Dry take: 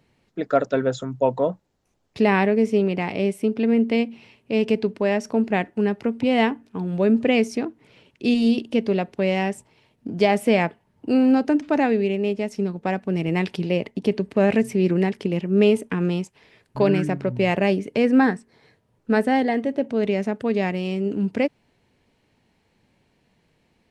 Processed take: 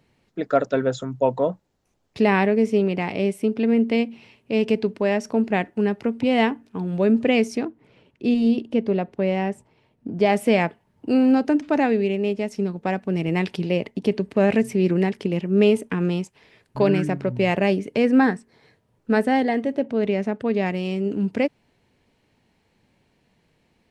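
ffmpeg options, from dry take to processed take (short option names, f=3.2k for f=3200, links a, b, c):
-filter_complex "[0:a]asplit=3[a][b][c];[a]afade=t=out:st=7.67:d=0.02[d];[b]highshelf=f=2.3k:g=-10.5,afade=t=in:st=7.67:d=0.02,afade=t=out:st=10.25:d=0.02[e];[c]afade=t=in:st=10.25:d=0.02[f];[d][e][f]amix=inputs=3:normalize=0,asettb=1/sr,asplit=3[g][h][i];[g]atrim=end=19.834[j];[h]atrim=start=19.83:end=20.66,asetpts=PTS-STARTPTS,afade=t=in:d=0.004:c=qsin,afade=t=out:st=0.826:d=0.004:c=qsin,highshelf=f=6.4k:g=-10[k];[i]atrim=start=20.656[l];[j][k]acrossfade=d=0.004:c1=hsin:c2=qsin[m];[m][l]acrossfade=d=0.004:c1=qsin:c2=hsin"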